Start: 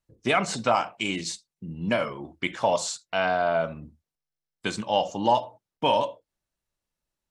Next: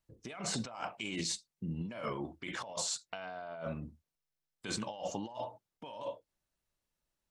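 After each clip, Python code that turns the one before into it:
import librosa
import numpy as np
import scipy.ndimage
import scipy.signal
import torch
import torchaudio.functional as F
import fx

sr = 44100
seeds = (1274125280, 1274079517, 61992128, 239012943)

y = fx.over_compress(x, sr, threshold_db=-33.0, ratio=-1.0)
y = F.gain(torch.from_numpy(y), -7.5).numpy()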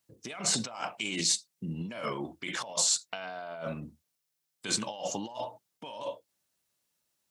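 y = scipy.signal.sosfilt(scipy.signal.butter(2, 120.0, 'highpass', fs=sr, output='sos'), x)
y = fx.high_shelf(y, sr, hz=3200.0, db=9.0)
y = F.gain(torch.from_numpy(y), 3.0).numpy()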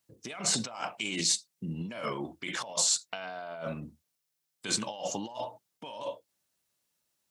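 y = x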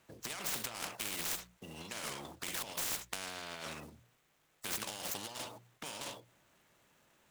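y = scipy.signal.medfilt(x, 9)
y = fx.hum_notches(y, sr, base_hz=60, count=3)
y = fx.spectral_comp(y, sr, ratio=4.0)
y = F.gain(torch.from_numpy(y), 2.0).numpy()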